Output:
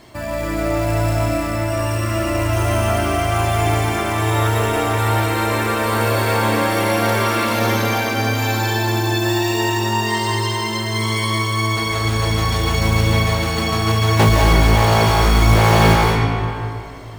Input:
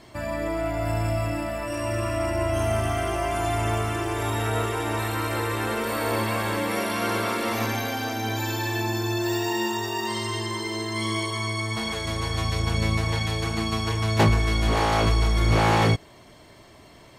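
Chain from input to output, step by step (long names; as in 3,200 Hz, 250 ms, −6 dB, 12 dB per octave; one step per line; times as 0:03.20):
floating-point word with a short mantissa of 2 bits
comb and all-pass reverb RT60 2.6 s, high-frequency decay 0.6×, pre-delay 120 ms, DRR −3 dB
level +4 dB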